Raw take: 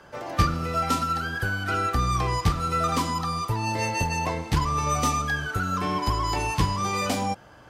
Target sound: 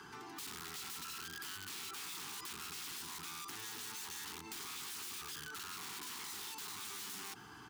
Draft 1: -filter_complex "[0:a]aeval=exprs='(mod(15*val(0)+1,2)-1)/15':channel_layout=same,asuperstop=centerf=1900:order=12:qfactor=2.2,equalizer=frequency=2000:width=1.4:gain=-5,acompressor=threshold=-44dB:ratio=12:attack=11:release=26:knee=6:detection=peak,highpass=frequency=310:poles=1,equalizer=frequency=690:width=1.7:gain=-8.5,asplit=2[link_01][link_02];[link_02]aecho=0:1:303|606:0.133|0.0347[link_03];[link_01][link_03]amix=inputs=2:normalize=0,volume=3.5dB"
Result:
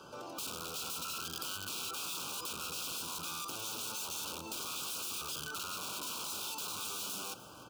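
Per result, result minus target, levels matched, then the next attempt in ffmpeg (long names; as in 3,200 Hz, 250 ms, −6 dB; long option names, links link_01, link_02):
echo-to-direct +9.5 dB; downward compressor: peak gain reduction −6 dB; 2,000 Hz band −4.0 dB
-filter_complex "[0:a]aeval=exprs='(mod(15*val(0)+1,2)-1)/15':channel_layout=same,asuperstop=centerf=1900:order=12:qfactor=2.2,equalizer=frequency=2000:width=1.4:gain=-5,acompressor=threshold=-44dB:ratio=12:attack=11:release=26:knee=6:detection=peak,highpass=frequency=310:poles=1,equalizer=frequency=690:width=1.7:gain=-8.5,asplit=2[link_01][link_02];[link_02]aecho=0:1:303|606:0.0447|0.0116[link_03];[link_01][link_03]amix=inputs=2:normalize=0,volume=3.5dB"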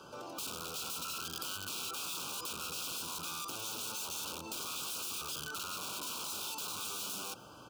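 downward compressor: peak gain reduction −6 dB; 2,000 Hz band −4.0 dB
-filter_complex "[0:a]aeval=exprs='(mod(15*val(0)+1,2)-1)/15':channel_layout=same,asuperstop=centerf=1900:order=12:qfactor=2.2,equalizer=frequency=2000:width=1.4:gain=-5,acompressor=threshold=-50dB:ratio=12:attack=11:release=26:knee=6:detection=peak,highpass=frequency=310:poles=1,equalizer=frequency=690:width=1.7:gain=-8.5,asplit=2[link_01][link_02];[link_02]aecho=0:1:303|606:0.0447|0.0116[link_03];[link_01][link_03]amix=inputs=2:normalize=0,volume=3.5dB"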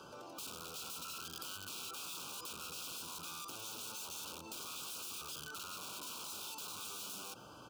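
2,000 Hz band −4.0 dB
-filter_complex "[0:a]aeval=exprs='(mod(15*val(0)+1,2)-1)/15':channel_layout=same,asuperstop=centerf=570:order=12:qfactor=2.2,equalizer=frequency=2000:width=1.4:gain=-5,acompressor=threshold=-50dB:ratio=12:attack=11:release=26:knee=6:detection=peak,highpass=frequency=310:poles=1,equalizer=frequency=690:width=1.7:gain=-8.5,asplit=2[link_01][link_02];[link_02]aecho=0:1:303|606:0.0447|0.0116[link_03];[link_01][link_03]amix=inputs=2:normalize=0,volume=3.5dB"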